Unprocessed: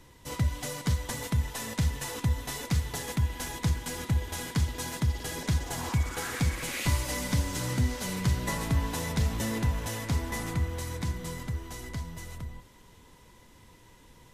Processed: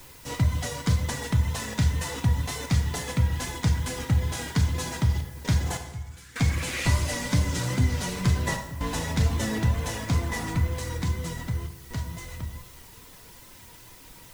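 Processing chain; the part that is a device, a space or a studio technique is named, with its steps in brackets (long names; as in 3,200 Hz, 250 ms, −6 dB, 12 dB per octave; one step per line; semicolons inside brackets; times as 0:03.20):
worn cassette (low-pass filter 9,400 Hz 12 dB per octave; tape wow and flutter; tape dropouts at 0:05.21/0:08.57/0:11.67, 234 ms −15 dB; white noise bed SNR 23 dB)
reverb reduction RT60 0.61 s
0:05.77–0:06.36: guitar amp tone stack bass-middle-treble 6-0-2
dense smooth reverb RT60 0.99 s, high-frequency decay 0.75×, DRR 4 dB
level +3.5 dB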